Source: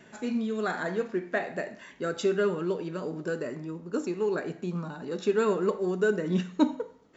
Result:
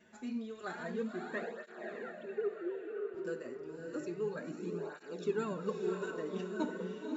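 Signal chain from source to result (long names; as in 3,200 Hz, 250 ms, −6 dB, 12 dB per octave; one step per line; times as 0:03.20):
0:01.53–0:03.15: three sine waves on the formant tracks
feedback delay with all-pass diffusion 558 ms, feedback 42%, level −3.5 dB
through-zero flanger with one copy inverted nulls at 0.3 Hz, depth 7.3 ms
level −8 dB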